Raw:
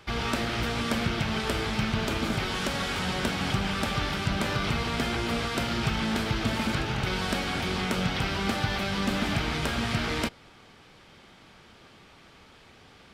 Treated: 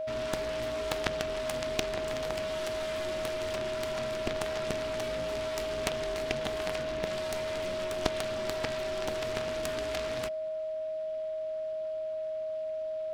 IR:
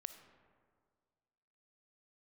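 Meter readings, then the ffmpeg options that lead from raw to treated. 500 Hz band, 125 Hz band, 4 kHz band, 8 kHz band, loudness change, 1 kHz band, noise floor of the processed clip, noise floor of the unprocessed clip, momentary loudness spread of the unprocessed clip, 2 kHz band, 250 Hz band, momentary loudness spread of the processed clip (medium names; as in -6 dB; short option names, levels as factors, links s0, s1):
+5.0 dB, -13.5 dB, -8.0 dB, -3.5 dB, -5.5 dB, -8.0 dB, -35 dBFS, -54 dBFS, 1 LU, -8.5 dB, -12.0 dB, 3 LU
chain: -af "aeval=exprs='val(0)*sin(2*PI*180*n/s)':c=same,aeval=exprs='0.188*(cos(1*acos(clip(val(0)/0.188,-1,1)))-cos(1*PI/2))+0.0596*(cos(2*acos(clip(val(0)/0.188,-1,1)))-cos(2*PI/2))+0.0841*(cos(3*acos(clip(val(0)/0.188,-1,1)))-cos(3*PI/2))+0.0211*(cos(4*acos(clip(val(0)/0.188,-1,1)))-cos(4*PI/2))':c=same,aeval=exprs='val(0)+0.0141*sin(2*PI*630*n/s)':c=same,volume=1.78"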